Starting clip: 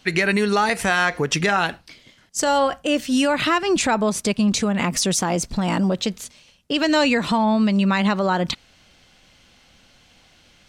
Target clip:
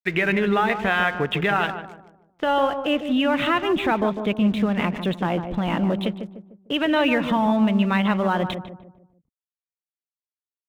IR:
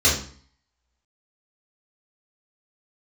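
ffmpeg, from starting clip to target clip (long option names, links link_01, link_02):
-filter_complex "[0:a]aresample=8000,aresample=44100,aeval=exprs='sgn(val(0))*max(abs(val(0))-0.00794,0)':channel_layout=same,asplit=2[link_01][link_02];[link_02]adelay=150,lowpass=frequency=990:poles=1,volume=-7dB,asplit=2[link_03][link_04];[link_04]adelay=150,lowpass=frequency=990:poles=1,volume=0.44,asplit=2[link_05][link_06];[link_06]adelay=150,lowpass=frequency=990:poles=1,volume=0.44,asplit=2[link_07][link_08];[link_08]adelay=150,lowpass=frequency=990:poles=1,volume=0.44,asplit=2[link_09][link_10];[link_10]adelay=150,lowpass=frequency=990:poles=1,volume=0.44[link_11];[link_01][link_03][link_05][link_07][link_09][link_11]amix=inputs=6:normalize=0,volume=-1.5dB"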